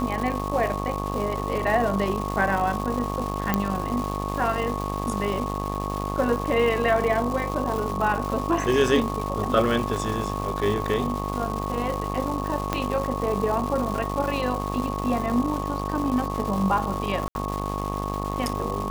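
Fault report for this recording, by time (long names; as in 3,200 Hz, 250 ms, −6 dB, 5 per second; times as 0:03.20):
mains buzz 50 Hz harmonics 25 −30 dBFS
surface crackle 450 per second −29 dBFS
whistle 1,100 Hz −32 dBFS
0:03.54: click −7 dBFS
0:12.73: click −9 dBFS
0:17.28–0:17.35: drop-out 70 ms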